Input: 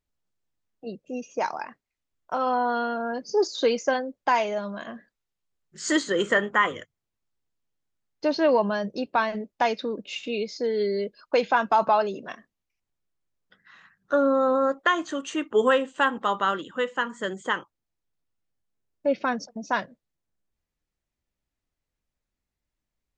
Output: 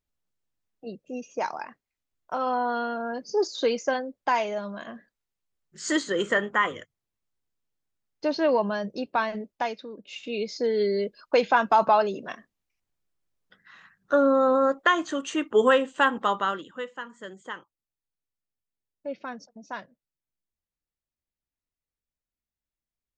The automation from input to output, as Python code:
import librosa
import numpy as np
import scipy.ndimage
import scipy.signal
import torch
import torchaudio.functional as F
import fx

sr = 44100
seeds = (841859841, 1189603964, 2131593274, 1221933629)

y = fx.gain(x, sr, db=fx.line((9.5, -2.0), (9.88, -11.0), (10.5, 1.0), (16.25, 1.0), (17.0, -10.5)))